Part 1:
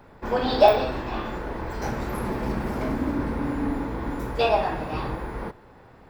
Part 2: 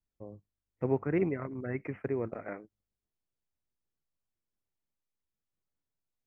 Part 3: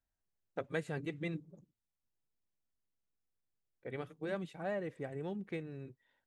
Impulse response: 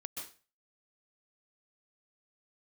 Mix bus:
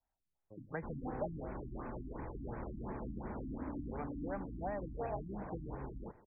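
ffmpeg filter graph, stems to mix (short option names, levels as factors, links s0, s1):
-filter_complex "[0:a]equalizer=f=2300:t=o:w=1.4:g=-5.5,adelay=600,volume=0.266[s0];[1:a]acompressor=threshold=0.0224:ratio=6,adelay=300,volume=0.335[s1];[2:a]equalizer=f=830:w=1.8:g=12,volume=0.841[s2];[s0][s1][s2]amix=inputs=3:normalize=0,acrossover=split=300|640[s3][s4][s5];[s3]acompressor=threshold=0.00891:ratio=4[s6];[s4]acompressor=threshold=0.00316:ratio=4[s7];[s5]acompressor=threshold=0.00891:ratio=4[s8];[s6][s7][s8]amix=inputs=3:normalize=0,afftfilt=real='re*lt(b*sr/1024,320*pow(2600/320,0.5+0.5*sin(2*PI*2.8*pts/sr)))':imag='im*lt(b*sr/1024,320*pow(2600/320,0.5+0.5*sin(2*PI*2.8*pts/sr)))':win_size=1024:overlap=0.75"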